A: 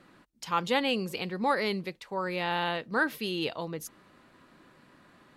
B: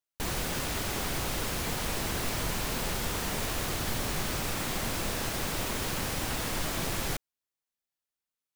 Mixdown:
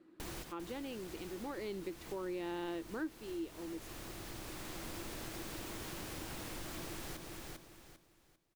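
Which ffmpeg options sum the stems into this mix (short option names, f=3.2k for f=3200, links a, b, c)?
-filter_complex "[0:a]equalizer=f=330:t=o:w=1:g=11.5,volume=-7dB,afade=t=in:st=1.43:d=0.45:silence=0.354813,afade=t=out:st=2.77:d=0.51:silence=0.316228,asplit=2[a][b];[1:a]volume=-9.5dB,asplit=2[c][d];[d]volume=-6.5dB[e];[b]apad=whole_len=377110[f];[c][f]sidechaincompress=threshold=-58dB:ratio=8:attack=5.9:release=905[g];[e]aecho=0:1:397|794|1191|1588:1|0.28|0.0784|0.022[h];[a][g][h]amix=inputs=3:normalize=0,equalizer=f=330:w=6:g=10.5,acompressor=threshold=-43dB:ratio=2.5"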